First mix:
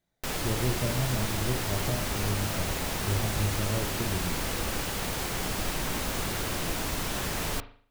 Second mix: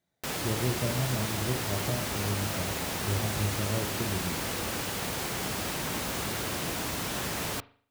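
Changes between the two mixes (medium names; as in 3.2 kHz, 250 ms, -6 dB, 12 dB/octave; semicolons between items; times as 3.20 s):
background: send -6.0 dB; master: add high-pass 81 Hz 12 dB/octave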